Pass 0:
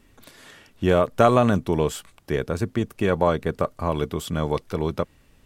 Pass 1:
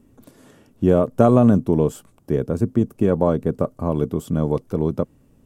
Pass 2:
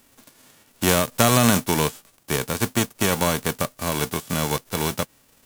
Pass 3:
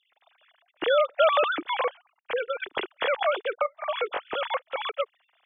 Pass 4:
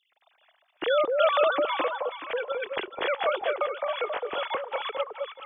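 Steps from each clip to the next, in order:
octave-band graphic EQ 125/250/500/2,000/4,000 Hz +7/+9/+4/−8/−8 dB; level −3 dB
spectral envelope flattened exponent 0.3; level −3.5 dB
three sine waves on the formant tracks; level −4.5 dB
delay that swaps between a low-pass and a high-pass 213 ms, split 1,000 Hz, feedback 50%, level −2 dB; level −2 dB

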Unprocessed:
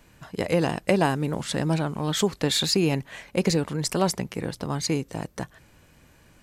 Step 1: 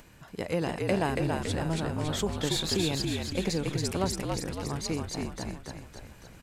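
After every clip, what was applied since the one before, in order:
upward compression, threshold −39 dBFS
on a send: echo with shifted repeats 280 ms, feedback 56%, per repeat −52 Hz, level −3 dB
on the sum: level −7 dB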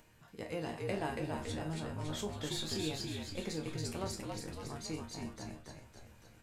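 resonators tuned to a chord D#2 sus4, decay 0.24 s
level +1 dB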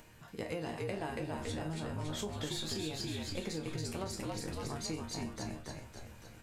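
downward compressor, threshold −41 dBFS, peak gain reduction 9.5 dB
level +6 dB

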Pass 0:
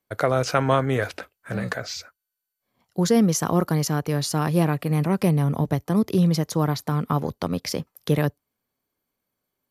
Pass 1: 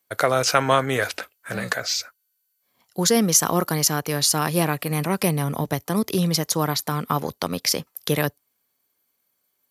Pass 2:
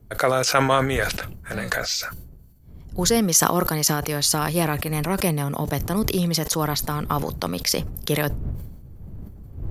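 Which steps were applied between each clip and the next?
spectral tilt +2.5 dB per octave; level +3 dB
wind on the microphone 96 Hz −38 dBFS; level that may fall only so fast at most 54 dB per second; level −1 dB

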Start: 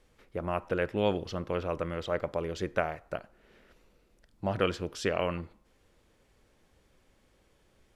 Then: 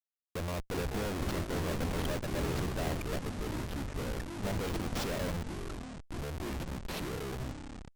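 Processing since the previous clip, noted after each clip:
comparator with hysteresis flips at −37.5 dBFS
delay with pitch and tempo change per echo 272 ms, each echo −5 semitones, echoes 3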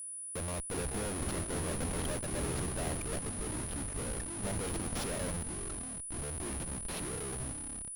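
steady tone 9,800 Hz −38 dBFS
level −2.5 dB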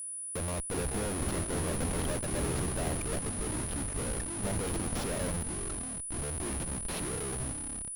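de-essing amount 75%
level +3.5 dB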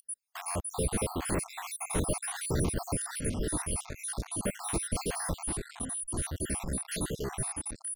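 time-frequency cells dropped at random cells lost 58%
level +4.5 dB

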